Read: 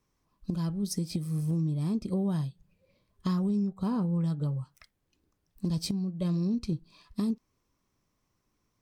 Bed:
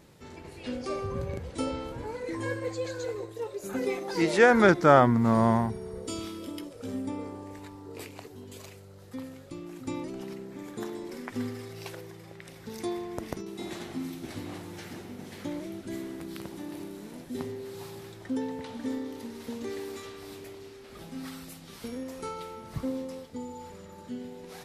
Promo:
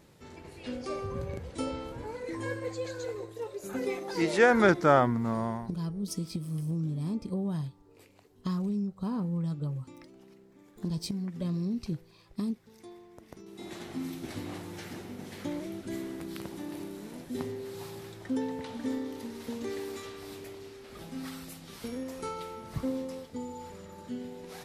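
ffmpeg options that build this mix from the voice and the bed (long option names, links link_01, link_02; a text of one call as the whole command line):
ffmpeg -i stem1.wav -i stem2.wav -filter_complex "[0:a]adelay=5200,volume=-3dB[link_01];[1:a]volume=13.5dB,afade=type=out:start_time=4.76:duration=0.99:silence=0.211349,afade=type=in:start_time=13.27:duration=0.84:silence=0.158489[link_02];[link_01][link_02]amix=inputs=2:normalize=0" out.wav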